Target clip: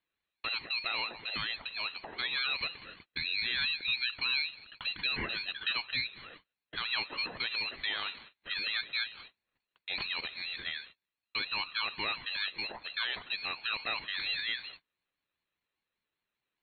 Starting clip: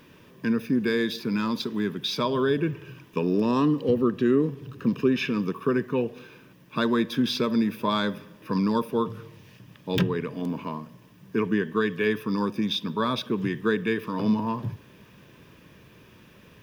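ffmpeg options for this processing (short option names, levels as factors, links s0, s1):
-filter_complex "[0:a]highpass=f=1200:p=1,agate=range=0.0224:threshold=0.00251:ratio=16:detection=peak,asplit=2[s0][s1];[s1]acompressor=threshold=0.00562:ratio=6,volume=0.944[s2];[s0][s2]amix=inputs=2:normalize=0,alimiter=limit=0.0794:level=0:latency=1:release=49,lowpass=f=3100:t=q:w=0.5098,lowpass=f=3100:t=q:w=0.6013,lowpass=f=3100:t=q:w=0.9,lowpass=f=3100:t=q:w=2.563,afreqshift=-3600,crystalizer=i=1.5:c=0,aeval=exprs='val(0)*sin(2*PI*790*n/s+790*0.25/5*sin(2*PI*5*n/s))':c=same"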